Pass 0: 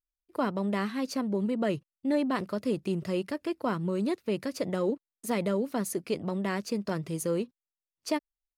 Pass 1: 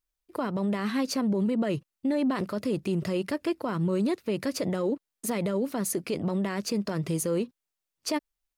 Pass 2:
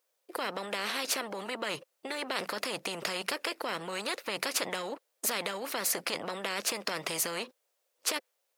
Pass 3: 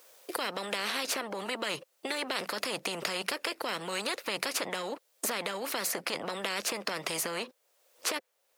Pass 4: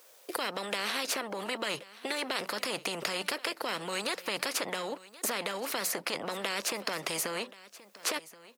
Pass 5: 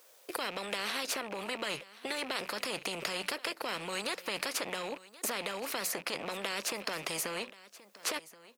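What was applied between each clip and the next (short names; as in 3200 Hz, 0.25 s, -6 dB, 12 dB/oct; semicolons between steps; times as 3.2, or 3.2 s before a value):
limiter -27 dBFS, peak gain reduction 10 dB; gain +7 dB
dynamic EQ 2000 Hz, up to +4 dB, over -45 dBFS, Q 0.94; resonant high-pass 520 Hz, resonance Q 5.3; spectral compressor 4:1; gain -6.5 dB
three-band squash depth 70%
echo 1.077 s -19 dB
rattling part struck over -57 dBFS, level -32 dBFS; gain -2.5 dB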